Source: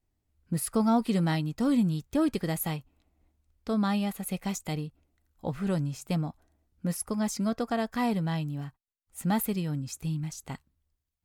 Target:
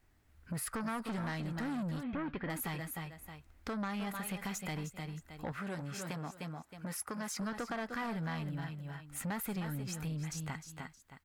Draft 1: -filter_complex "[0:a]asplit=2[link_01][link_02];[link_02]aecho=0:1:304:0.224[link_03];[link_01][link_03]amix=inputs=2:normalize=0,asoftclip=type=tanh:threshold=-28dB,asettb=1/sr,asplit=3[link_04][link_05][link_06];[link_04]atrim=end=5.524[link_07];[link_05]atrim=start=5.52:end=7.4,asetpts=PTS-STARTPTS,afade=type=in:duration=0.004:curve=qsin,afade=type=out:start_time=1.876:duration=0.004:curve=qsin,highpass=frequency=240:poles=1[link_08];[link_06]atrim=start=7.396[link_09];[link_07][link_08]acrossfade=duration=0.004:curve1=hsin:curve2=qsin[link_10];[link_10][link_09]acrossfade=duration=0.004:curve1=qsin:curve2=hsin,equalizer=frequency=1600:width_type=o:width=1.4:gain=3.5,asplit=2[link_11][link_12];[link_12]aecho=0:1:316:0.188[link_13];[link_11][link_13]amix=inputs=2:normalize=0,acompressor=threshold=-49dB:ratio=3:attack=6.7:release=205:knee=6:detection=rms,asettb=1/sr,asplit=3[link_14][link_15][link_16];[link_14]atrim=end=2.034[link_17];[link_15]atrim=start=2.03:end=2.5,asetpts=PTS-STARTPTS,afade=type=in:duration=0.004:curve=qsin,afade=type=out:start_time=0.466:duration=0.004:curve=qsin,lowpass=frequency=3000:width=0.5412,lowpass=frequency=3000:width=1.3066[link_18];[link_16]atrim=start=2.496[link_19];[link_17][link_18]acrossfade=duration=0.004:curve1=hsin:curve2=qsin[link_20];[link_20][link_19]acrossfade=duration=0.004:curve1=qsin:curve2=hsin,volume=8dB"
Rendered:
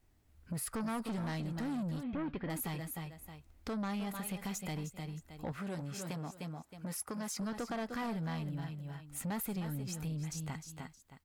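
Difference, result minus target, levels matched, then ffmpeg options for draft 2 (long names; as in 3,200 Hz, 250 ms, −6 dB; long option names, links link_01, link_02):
2,000 Hz band −4.5 dB
-filter_complex "[0:a]asplit=2[link_01][link_02];[link_02]aecho=0:1:304:0.224[link_03];[link_01][link_03]amix=inputs=2:normalize=0,asoftclip=type=tanh:threshold=-28dB,asettb=1/sr,asplit=3[link_04][link_05][link_06];[link_04]atrim=end=5.524[link_07];[link_05]atrim=start=5.52:end=7.4,asetpts=PTS-STARTPTS,afade=type=in:duration=0.004:curve=qsin,afade=type=out:start_time=1.876:duration=0.004:curve=qsin,highpass=frequency=240:poles=1[link_08];[link_06]atrim=start=7.396[link_09];[link_07][link_08]acrossfade=duration=0.004:curve1=hsin:curve2=qsin[link_10];[link_10][link_09]acrossfade=duration=0.004:curve1=qsin:curve2=hsin,equalizer=frequency=1600:width_type=o:width=1.4:gain=10.5,asplit=2[link_11][link_12];[link_12]aecho=0:1:316:0.188[link_13];[link_11][link_13]amix=inputs=2:normalize=0,acompressor=threshold=-49dB:ratio=3:attack=6.7:release=205:knee=6:detection=rms,asettb=1/sr,asplit=3[link_14][link_15][link_16];[link_14]atrim=end=2.034[link_17];[link_15]atrim=start=2.03:end=2.5,asetpts=PTS-STARTPTS,afade=type=in:duration=0.004:curve=qsin,afade=type=out:start_time=0.466:duration=0.004:curve=qsin,lowpass=frequency=3000:width=0.5412,lowpass=frequency=3000:width=1.3066[link_18];[link_16]atrim=start=2.496[link_19];[link_17][link_18]acrossfade=duration=0.004:curve1=hsin:curve2=qsin[link_20];[link_20][link_19]acrossfade=duration=0.004:curve1=qsin:curve2=hsin,volume=8dB"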